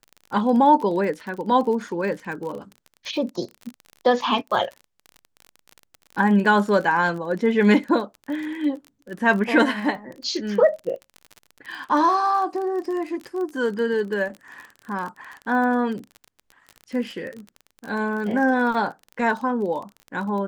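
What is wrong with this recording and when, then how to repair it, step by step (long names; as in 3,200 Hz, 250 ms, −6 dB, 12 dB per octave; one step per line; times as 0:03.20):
surface crackle 33 per second −30 dBFS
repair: click removal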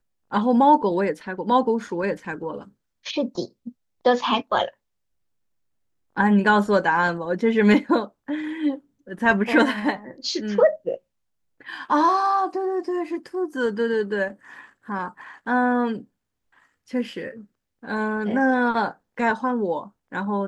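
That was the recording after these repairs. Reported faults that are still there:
none of them is left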